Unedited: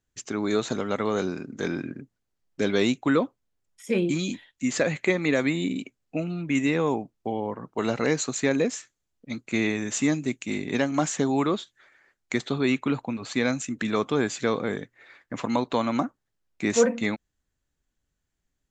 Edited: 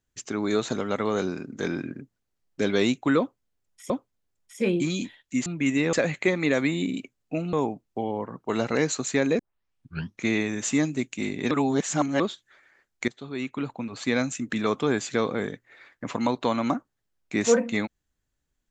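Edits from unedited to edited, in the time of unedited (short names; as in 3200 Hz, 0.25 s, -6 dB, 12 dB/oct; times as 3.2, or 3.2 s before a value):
3.19–3.9 loop, 2 plays
6.35–6.82 move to 4.75
8.68 tape start 0.87 s
10.8–11.49 reverse
12.37–13.41 fade in, from -18.5 dB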